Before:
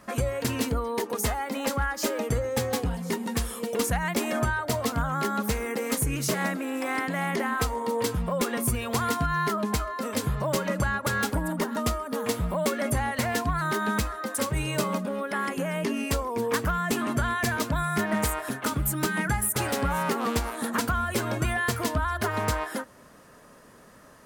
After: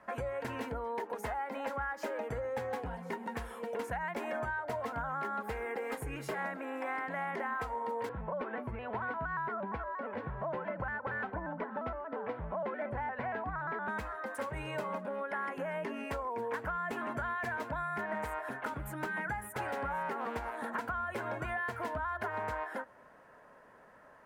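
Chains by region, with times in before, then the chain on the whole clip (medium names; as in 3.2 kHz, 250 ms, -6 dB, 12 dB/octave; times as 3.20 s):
5.40–6.38 s: band-stop 6 kHz, Q 11 + comb 2.5 ms, depth 34%
8.09–13.88 s: distance through air 390 m + vibrato with a chosen wave square 4.3 Hz, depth 100 cents
whole clip: three-band isolator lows -13 dB, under 560 Hz, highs -22 dB, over 2 kHz; band-stop 1.2 kHz, Q 6.6; compression 3:1, threshold -34 dBFS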